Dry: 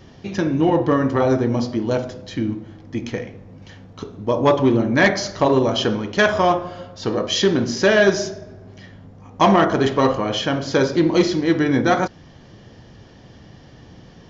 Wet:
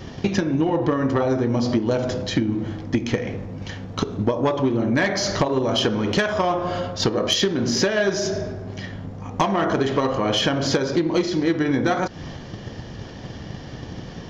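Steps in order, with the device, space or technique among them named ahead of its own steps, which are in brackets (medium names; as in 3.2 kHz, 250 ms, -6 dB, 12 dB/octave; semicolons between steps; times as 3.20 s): drum-bus smash (transient shaper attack +8 dB, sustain +4 dB; compression 20:1, threshold -23 dBFS, peak gain reduction 19.5 dB; saturation -16.5 dBFS, distortion -20 dB); trim +7.5 dB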